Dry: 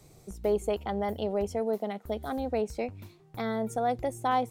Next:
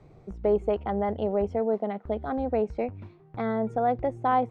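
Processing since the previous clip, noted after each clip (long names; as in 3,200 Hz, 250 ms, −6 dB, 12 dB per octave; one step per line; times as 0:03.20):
low-pass filter 1,800 Hz 12 dB per octave
level +3.5 dB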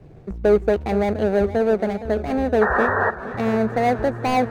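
running median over 41 samples
sound drawn into the spectrogram noise, 0:02.61–0:03.11, 370–1,900 Hz −29 dBFS
feedback echo with a swinging delay time 466 ms, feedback 68%, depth 94 cents, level −14.5 dB
level +8.5 dB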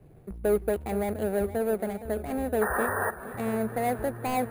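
bad sample-rate conversion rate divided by 4×, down filtered, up hold
level −8.5 dB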